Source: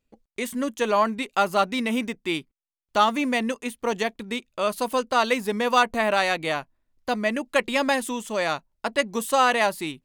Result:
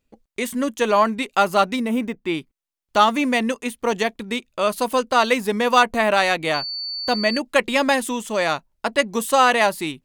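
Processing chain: 1.75–2.37 bell 2500 Hz -> 15000 Hz -11 dB 2.7 oct; 6.53–7.38 whine 4500 Hz -30 dBFS; gain +4 dB

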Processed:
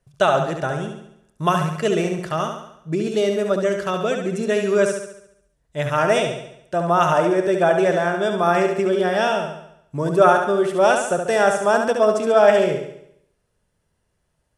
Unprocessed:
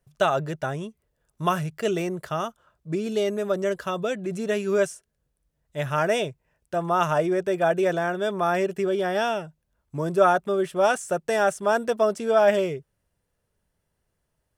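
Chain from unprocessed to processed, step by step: LPF 11000 Hz 24 dB/oct; flutter echo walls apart 12 m, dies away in 0.73 s; gain +4 dB

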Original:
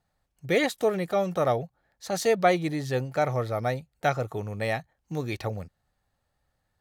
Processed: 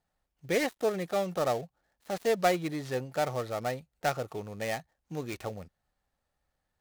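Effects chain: switching dead time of 0.11 ms; bell 110 Hz -6.5 dB 0.85 oct; gain -4 dB

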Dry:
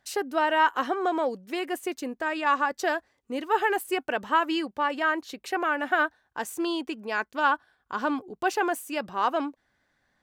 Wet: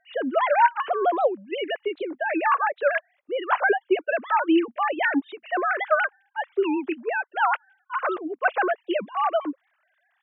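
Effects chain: sine-wave speech; 6.52–8.08 HPF 310 Hz 6 dB/oct; in parallel at +1 dB: compressor, threshold -30 dBFS, peak gain reduction 14.5 dB; on the sum: record warp 78 rpm, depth 250 cents

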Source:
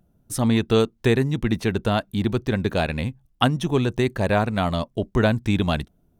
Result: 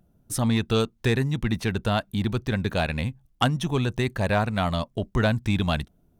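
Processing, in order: dynamic EQ 360 Hz, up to -6 dB, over -33 dBFS, Q 1; soft clip -9.5 dBFS, distortion -23 dB

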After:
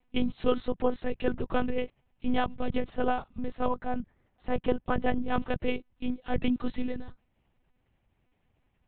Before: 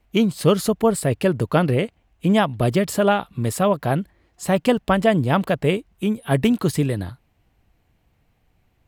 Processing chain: 2.79–5.29 high shelf 2700 Hz -8.5 dB; monotone LPC vocoder at 8 kHz 250 Hz; gain -8.5 dB

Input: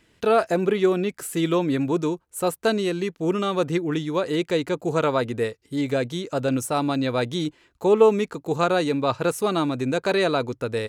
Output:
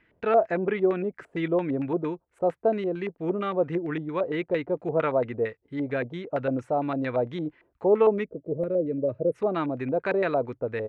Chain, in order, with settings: LFO low-pass square 4.4 Hz 660–2000 Hz; spectral gain 8.24–9.35, 660–8500 Hz -24 dB; gain -6 dB

